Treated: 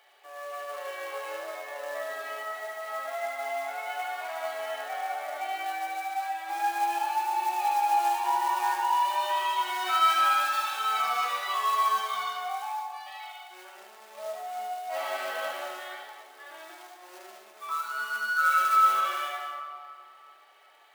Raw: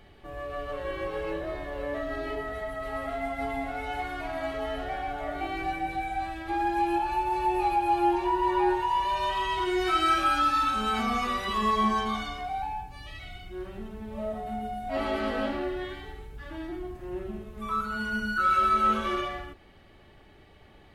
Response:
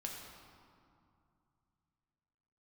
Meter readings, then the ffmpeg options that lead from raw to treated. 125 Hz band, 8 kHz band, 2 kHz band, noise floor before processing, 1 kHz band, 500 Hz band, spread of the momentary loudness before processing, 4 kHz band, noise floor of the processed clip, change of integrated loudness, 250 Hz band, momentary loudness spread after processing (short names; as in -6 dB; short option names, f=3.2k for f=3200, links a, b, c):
under -40 dB, +7.0 dB, +2.0 dB, -54 dBFS, +0.5 dB, -5.5 dB, 16 LU, +1.0 dB, -53 dBFS, 0.0 dB, under -20 dB, 21 LU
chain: -filter_complex "[0:a]acrusher=bits=4:mode=log:mix=0:aa=0.000001,highpass=f=620:w=0.5412,highpass=f=620:w=1.3066,asplit=2[a][b];[1:a]atrim=start_sample=2205,adelay=73[c];[b][c]afir=irnorm=-1:irlink=0,volume=-1dB[d];[a][d]amix=inputs=2:normalize=0,volume=-1.5dB"